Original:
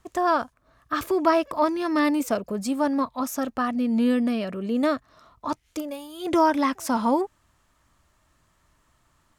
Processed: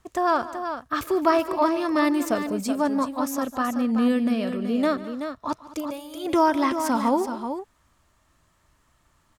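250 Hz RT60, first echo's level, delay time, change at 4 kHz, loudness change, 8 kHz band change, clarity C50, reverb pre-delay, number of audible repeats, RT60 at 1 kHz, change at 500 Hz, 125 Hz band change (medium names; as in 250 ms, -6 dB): no reverb, -18.5 dB, 146 ms, +0.5 dB, +0.5 dB, +0.5 dB, no reverb, no reverb, 3, no reverb, +0.5 dB, no reading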